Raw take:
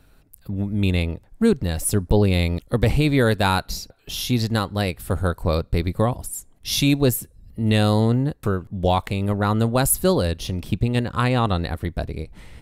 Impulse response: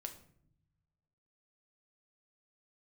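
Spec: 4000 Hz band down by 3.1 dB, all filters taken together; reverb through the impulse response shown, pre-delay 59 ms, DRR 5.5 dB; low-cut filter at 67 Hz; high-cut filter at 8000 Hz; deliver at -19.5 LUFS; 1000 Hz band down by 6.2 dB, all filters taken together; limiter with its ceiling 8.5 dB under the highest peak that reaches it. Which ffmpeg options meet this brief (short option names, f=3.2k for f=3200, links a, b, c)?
-filter_complex "[0:a]highpass=67,lowpass=8k,equalizer=f=1k:t=o:g=-8.5,equalizer=f=4k:t=o:g=-3,alimiter=limit=-14dB:level=0:latency=1,asplit=2[a][b];[1:a]atrim=start_sample=2205,adelay=59[c];[b][c]afir=irnorm=-1:irlink=0,volume=-2.5dB[d];[a][d]amix=inputs=2:normalize=0,volume=5.5dB"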